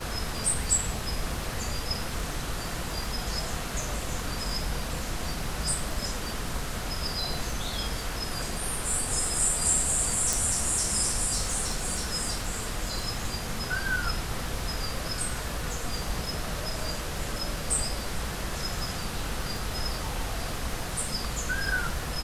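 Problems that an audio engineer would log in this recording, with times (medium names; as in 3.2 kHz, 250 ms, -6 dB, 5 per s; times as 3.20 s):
crackle 57 per s -35 dBFS
10.33 s: pop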